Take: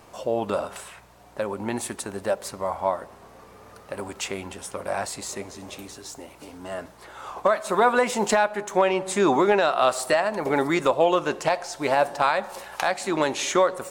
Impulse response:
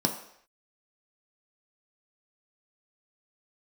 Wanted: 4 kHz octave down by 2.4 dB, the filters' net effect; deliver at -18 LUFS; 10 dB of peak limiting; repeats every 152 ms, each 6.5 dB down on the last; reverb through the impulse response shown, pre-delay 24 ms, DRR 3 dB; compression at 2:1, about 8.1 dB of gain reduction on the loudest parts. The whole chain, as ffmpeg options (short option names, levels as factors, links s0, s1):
-filter_complex "[0:a]equalizer=f=4000:t=o:g=-3,acompressor=threshold=0.0316:ratio=2,alimiter=limit=0.0708:level=0:latency=1,aecho=1:1:152|304|456|608|760|912:0.473|0.222|0.105|0.0491|0.0231|0.0109,asplit=2[s0][s1];[1:a]atrim=start_sample=2205,adelay=24[s2];[s1][s2]afir=irnorm=-1:irlink=0,volume=0.251[s3];[s0][s3]amix=inputs=2:normalize=0,volume=3.98"